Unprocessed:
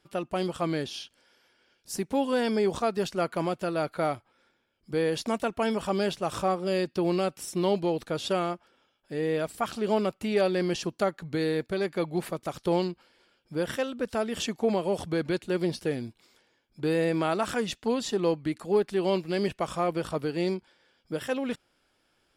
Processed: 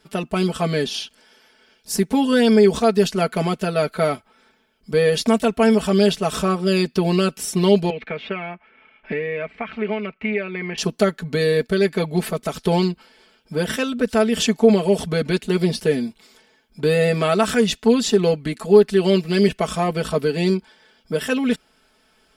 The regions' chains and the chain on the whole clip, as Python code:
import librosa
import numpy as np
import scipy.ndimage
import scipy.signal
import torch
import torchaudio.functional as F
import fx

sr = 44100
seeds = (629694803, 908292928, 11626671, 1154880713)

y = fx.chain(x, sr, fx.ladder_lowpass(hz=2400.0, resonance_pct=75),
    fx.band_squash(depth_pct=100), at=(7.9, 10.78))
y = fx.dynamic_eq(y, sr, hz=910.0, q=1.2, threshold_db=-41.0, ratio=4.0, max_db=-6)
y = y + 0.89 * np.pad(y, (int(4.6 * sr / 1000.0), 0))[:len(y)]
y = y * 10.0 ** (8.5 / 20.0)